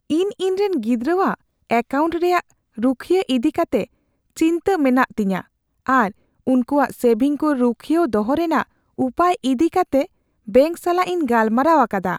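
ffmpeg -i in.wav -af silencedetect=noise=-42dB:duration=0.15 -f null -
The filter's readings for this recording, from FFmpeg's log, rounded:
silence_start: 1.35
silence_end: 1.70 | silence_duration: 0.35
silence_start: 2.51
silence_end: 2.77 | silence_duration: 0.27
silence_start: 3.86
silence_end: 4.36 | silence_duration: 0.51
silence_start: 5.44
silence_end: 5.87 | silence_duration: 0.43
silence_start: 6.12
silence_end: 6.47 | silence_duration: 0.35
silence_start: 8.64
silence_end: 8.98 | silence_duration: 0.35
silence_start: 10.06
silence_end: 10.47 | silence_duration: 0.41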